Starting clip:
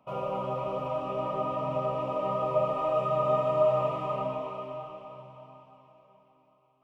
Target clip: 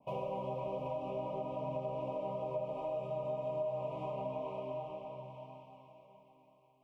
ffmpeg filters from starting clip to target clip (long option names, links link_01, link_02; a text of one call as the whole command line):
ffmpeg -i in.wav -af "acompressor=threshold=-35dB:ratio=5,asuperstop=centerf=1500:order=8:qfactor=1.4,adynamicequalizer=threshold=0.00251:dfrequency=1700:dqfactor=0.7:tfrequency=1700:tqfactor=0.7:attack=5:release=100:ratio=0.375:range=2:mode=cutabove:tftype=highshelf" out.wav